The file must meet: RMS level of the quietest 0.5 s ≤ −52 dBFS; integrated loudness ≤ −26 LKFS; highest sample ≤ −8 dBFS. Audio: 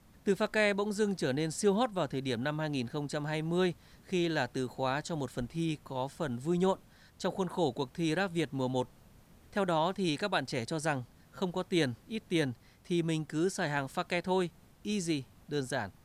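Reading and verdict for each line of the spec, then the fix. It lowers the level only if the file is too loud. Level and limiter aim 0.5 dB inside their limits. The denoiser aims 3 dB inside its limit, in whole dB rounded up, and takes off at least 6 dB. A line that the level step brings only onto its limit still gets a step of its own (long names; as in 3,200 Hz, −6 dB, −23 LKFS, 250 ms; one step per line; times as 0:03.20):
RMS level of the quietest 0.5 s −58 dBFS: in spec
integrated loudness −33.0 LKFS: in spec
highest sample −15.5 dBFS: in spec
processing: no processing needed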